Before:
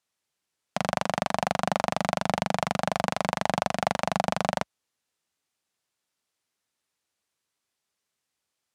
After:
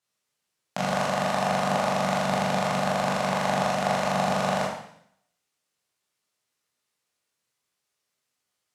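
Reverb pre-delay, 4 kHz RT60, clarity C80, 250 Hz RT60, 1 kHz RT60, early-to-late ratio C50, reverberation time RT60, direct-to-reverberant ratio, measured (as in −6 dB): 15 ms, 0.70 s, 6.5 dB, 0.75 s, 0.65 s, 2.5 dB, 0.65 s, −5.0 dB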